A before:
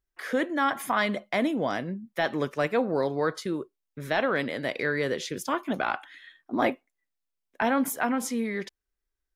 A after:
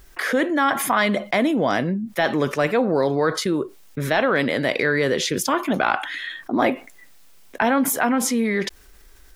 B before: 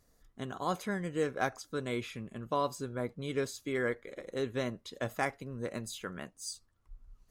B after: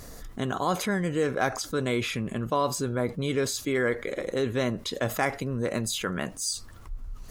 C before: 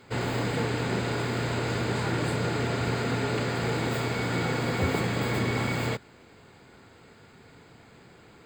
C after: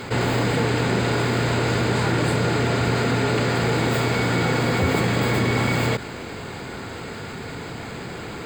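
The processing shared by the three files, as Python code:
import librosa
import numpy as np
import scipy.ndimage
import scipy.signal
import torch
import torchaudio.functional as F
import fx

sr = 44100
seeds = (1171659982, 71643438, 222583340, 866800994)

y = fx.env_flatten(x, sr, amount_pct=50)
y = y * librosa.db_to_amplitude(4.5)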